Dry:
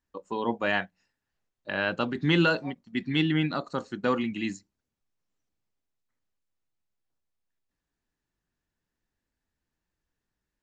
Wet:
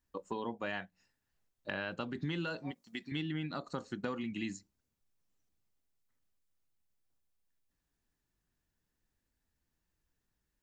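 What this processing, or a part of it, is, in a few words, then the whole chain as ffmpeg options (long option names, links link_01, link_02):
ASMR close-microphone chain: -filter_complex "[0:a]lowshelf=frequency=170:gain=5,acompressor=threshold=-33dB:ratio=6,highshelf=frequency=6400:gain=6.5,asettb=1/sr,asplit=3[link_01][link_02][link_03];[link_01]atrim=end=2.714[link_04];[link_02]atrim=start=2.71:end=3.12,asetpts=PTS-STARTPTS,afade=type=in:duration=0.004:curve=qsin,afade=type=out:start_time=0.406:duration=0.004:curve=qsin,bass=frequency=250:gain=-14,treble=frequency=4000:gain=8[link_05];[link_03]atrim=start=3.116[link_06];[link_04][link_05]acrossfade=duration=0.004:curve1=hsin:curve2=qsin[link_07];[link_07][link_06]acrossfade=duration=0.004:curve1=qsin:curve2=hsin,volume=-2dB"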